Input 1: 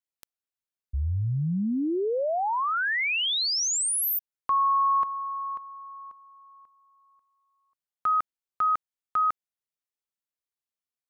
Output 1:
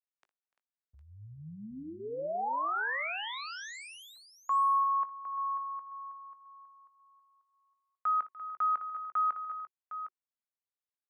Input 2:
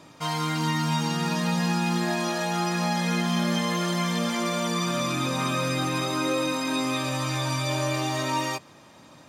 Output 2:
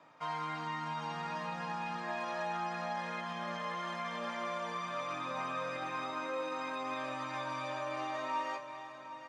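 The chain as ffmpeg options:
ffmpeg -i in.wav -filter_complex "[0:a]asplit=2[link_01][link_02];[link_02]adelay=19,volume=-13.5dB[link_03];[link_01][link_03]amix=inputs=2:normalize=0,acrossover=split=3900[link_04][link_05];[link_05]acontrast=88[link_06];[link_04][link_06]amix=inputs=2:normalize=0,alimiter=limit=-17.5dB:level=0:latency=1,highpass=130,lowpass=7000,acrossover=split=570 2200:gain=0.224 1 0.0708[link_07][link_08][link_09];[link_07][link_08][link_09]amix=inputs=3:normalize=0,bandreject=frequency=370:width=12,aecho=1:1:59|295|344|759:0.15|0.106|0.224|0.282,volume=-5dB" out.wav

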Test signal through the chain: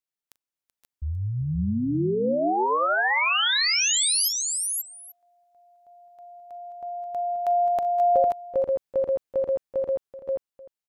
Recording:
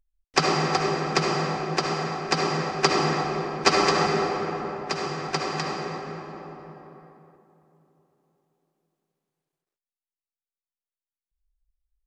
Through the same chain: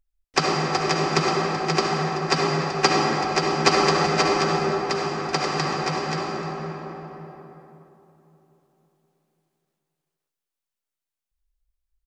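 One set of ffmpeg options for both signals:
ffmpeg -i in.wav -filter_complex "[0:a]dynaudnorm=framelen=300:gausssize=11:maxgain=5dB,asplit=2[link_01][link_02];[link_02]aecho=0:1:40|381|519|532|834:0.119|0.188|0.282|0.596|0.1[link_03];[link_01][link_03]amix=inputs=2:normalize=0" out.wav

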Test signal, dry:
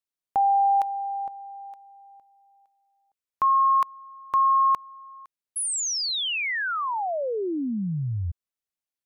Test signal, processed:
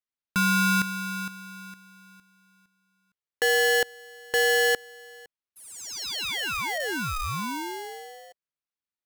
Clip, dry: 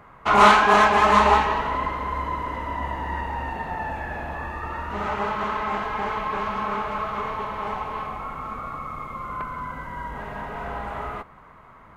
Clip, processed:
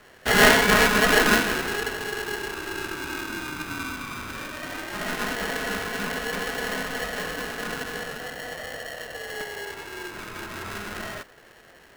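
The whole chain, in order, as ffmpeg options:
ffmpeg -i in.wav -af "afreqshift=16,highpass=300,lowpass=4100,aeval=exprs='val(0)*sgn(sin(2*PI*620*n/s))':channel_layout=same,volume=-2dB" out.wav

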